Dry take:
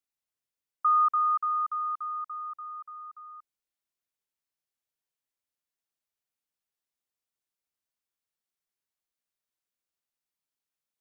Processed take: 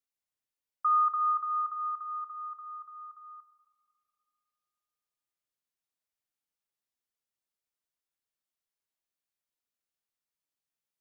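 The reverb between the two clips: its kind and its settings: algorithmic reverb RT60 2.5 s, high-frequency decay 0.75×, pre-delay 5 ms, DRR 11 dB; trim -3 dB

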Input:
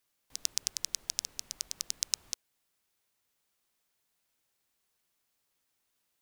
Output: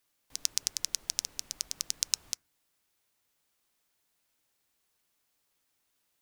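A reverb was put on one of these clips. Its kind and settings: FDN reverb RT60 0.37 s, low-frequency decay 1.5×, high-frequency decay 0.25×, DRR 17.5 dB; trim +2 dB

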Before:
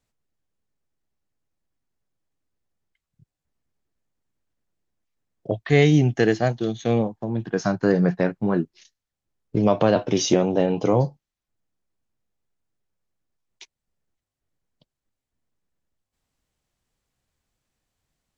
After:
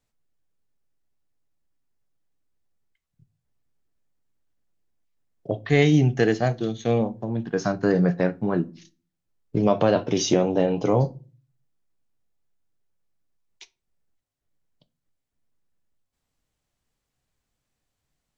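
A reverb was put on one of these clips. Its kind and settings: simulated room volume 170 m³, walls furnished, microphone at 0.34 m; trim -1.5 dB

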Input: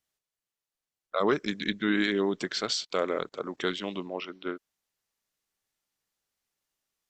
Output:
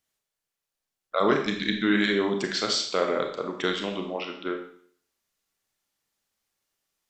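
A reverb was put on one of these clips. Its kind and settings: Schroeder reverb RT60 0.57 s, combs from 28 ms, DRR 3.5 dB; trim +2.5 dB

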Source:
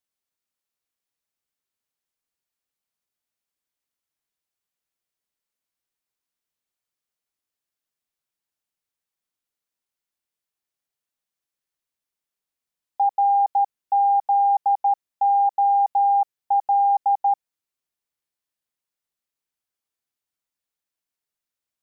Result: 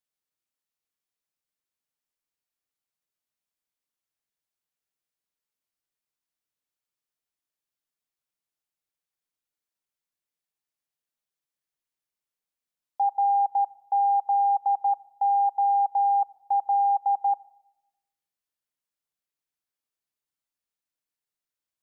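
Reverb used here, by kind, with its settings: simulated room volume 3200 m³, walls furnished, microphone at 0.48 m; trim -4 dB

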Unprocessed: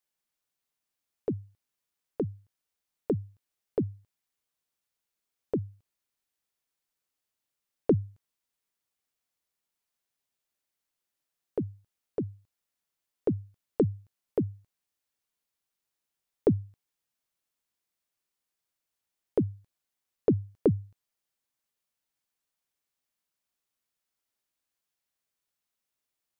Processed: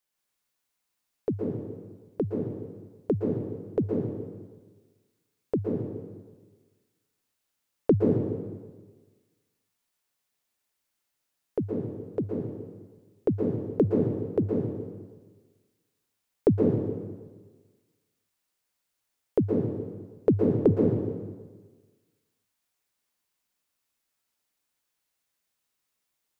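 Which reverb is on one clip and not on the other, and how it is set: plate-style reverb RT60 1.4 s, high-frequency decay 0.9×, pre-delay 105 ms, DRR -1.5 dB; trim +2 dB

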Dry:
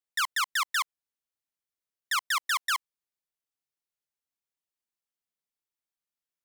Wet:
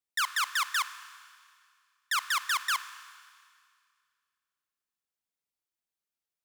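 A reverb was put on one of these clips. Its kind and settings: Schroeder reverb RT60 2.1 s, combs from 26 ms, DRR 13 dB; trim -1 dB

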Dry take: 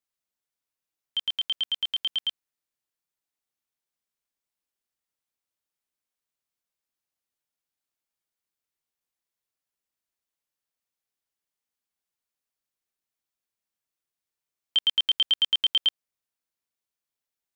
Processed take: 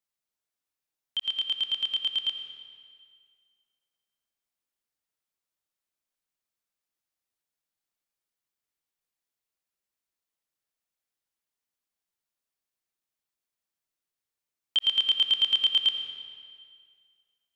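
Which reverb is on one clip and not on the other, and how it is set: algorithmic reverb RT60 2.1 s, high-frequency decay 0.85×, pre-delay 45 ms, DRR 6.5 dB; trim -1.5 dB

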